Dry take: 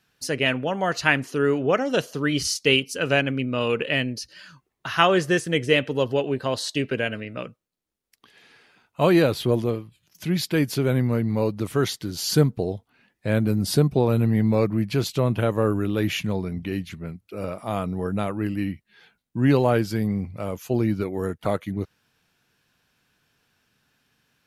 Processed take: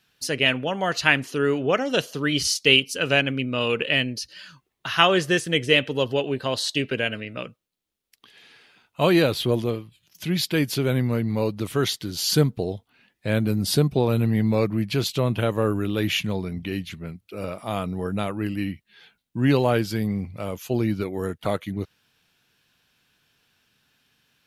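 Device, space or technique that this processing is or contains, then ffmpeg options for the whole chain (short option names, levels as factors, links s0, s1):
presence and air boost: -af "equalizer=f=3300:t=o:w=1.1:g=6,highshelf=f=9900:g=5,volume=0.891"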